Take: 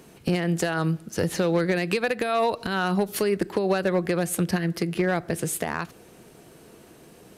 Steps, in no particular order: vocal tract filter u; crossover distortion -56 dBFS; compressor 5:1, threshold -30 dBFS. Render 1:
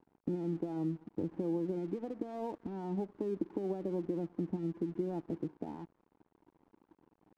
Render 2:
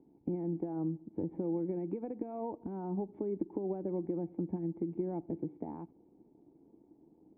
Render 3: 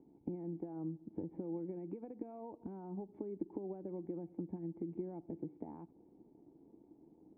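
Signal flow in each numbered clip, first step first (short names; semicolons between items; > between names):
vocal tract filter > crossover distortion > compressor; crossover distortion > vocal tract filter > compressor; crossover distortion > compressor > vocal tract filter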